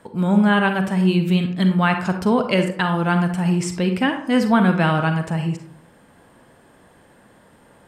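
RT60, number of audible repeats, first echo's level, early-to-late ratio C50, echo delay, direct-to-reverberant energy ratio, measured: 0.60 s, no echo, no echo, 7.5 dB, no echo, 6.0 dB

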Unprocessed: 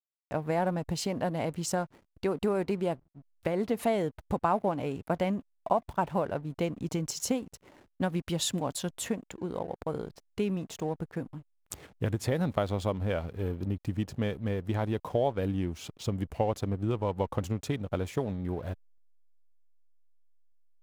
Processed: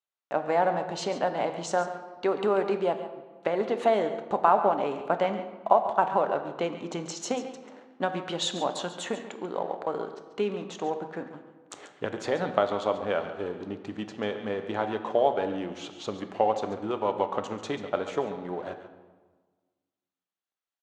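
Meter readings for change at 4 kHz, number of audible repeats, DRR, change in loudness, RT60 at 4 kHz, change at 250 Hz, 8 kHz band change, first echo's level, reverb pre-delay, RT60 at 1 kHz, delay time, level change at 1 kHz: +3.0 dB, 1, 6.5 dB, +3.0 dB, 1.0 s, -2.0 dB, -3.0 dB, -12.5 dB, 5 ms, 1.4 s, 139 ms, +7.5 dB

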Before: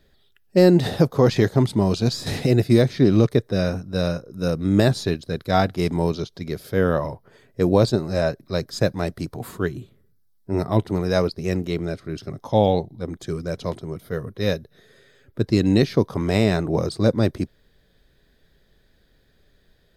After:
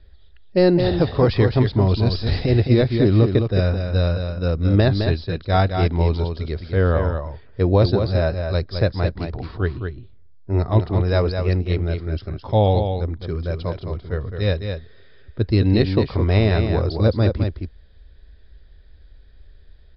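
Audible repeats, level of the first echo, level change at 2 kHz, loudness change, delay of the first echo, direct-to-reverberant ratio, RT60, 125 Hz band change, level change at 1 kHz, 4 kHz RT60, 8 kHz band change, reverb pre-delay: 1, -6.5 dB, +1.0 dB, +1.5 dB, 213 ms, no reverb, no reverb, +5.0 dB, +0.5 dB, no reverb, under -25 dB, no reverb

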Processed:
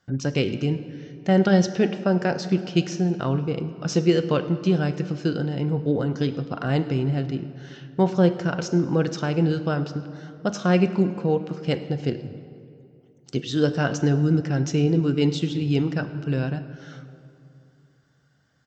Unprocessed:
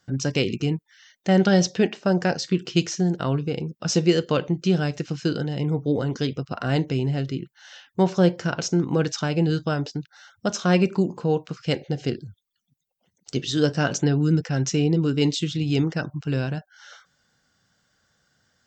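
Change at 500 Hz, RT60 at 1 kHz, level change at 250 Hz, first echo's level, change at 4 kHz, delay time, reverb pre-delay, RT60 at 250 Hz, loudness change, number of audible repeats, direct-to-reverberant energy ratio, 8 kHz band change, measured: +0.5 dB, 2.5 s, +0.5 dB, -22.5 dB, -4.0 dB, 105 ms, 33 ms, 3.1 s, 0.0 dB, 1, 11.5 dB, -6.5 dB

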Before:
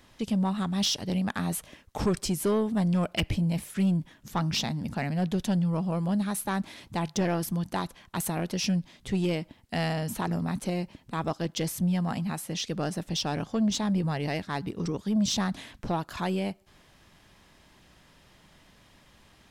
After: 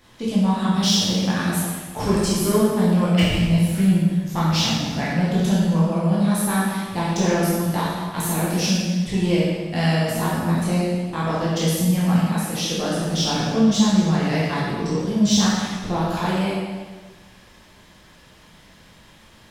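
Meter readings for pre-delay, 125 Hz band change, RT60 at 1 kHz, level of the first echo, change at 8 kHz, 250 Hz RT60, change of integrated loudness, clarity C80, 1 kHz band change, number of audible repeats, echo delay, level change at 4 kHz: 6 ms, +9.0 dB, 1.4 s, no echo, +9.0 dB, 1.3 s, +9.0 dB, 0.5 dB, +8.0 dB, no echo, no echo, +9.0 dB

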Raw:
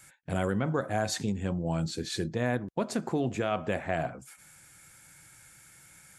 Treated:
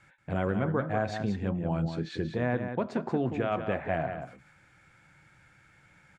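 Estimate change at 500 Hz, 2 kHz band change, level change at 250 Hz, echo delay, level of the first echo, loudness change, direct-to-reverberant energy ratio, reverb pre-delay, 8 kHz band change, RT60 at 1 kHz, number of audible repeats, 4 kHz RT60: +0.5 dB, -0.5 dB, +0.5 dB, 183 ms, -8.0 dB, 0.0 dB, no reverb, no reverb, under -15 dB, no reverb, 1, no reverb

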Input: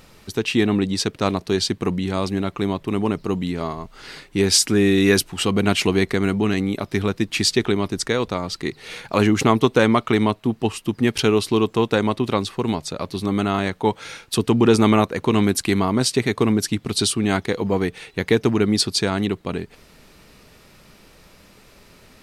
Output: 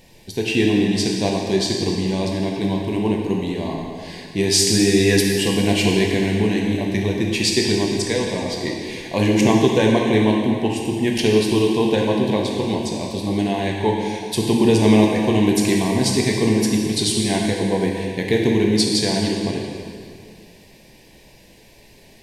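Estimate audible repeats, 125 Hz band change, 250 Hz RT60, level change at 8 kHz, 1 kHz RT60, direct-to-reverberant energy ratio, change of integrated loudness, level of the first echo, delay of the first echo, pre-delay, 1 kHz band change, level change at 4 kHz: no echo, +1.5 dB, 2.2 s, +1.5 dB, 2.2 s, -1.5 dB, +1.5 dB, no echo, no echo, 5 ms, -1.5 dB, +1.5 dB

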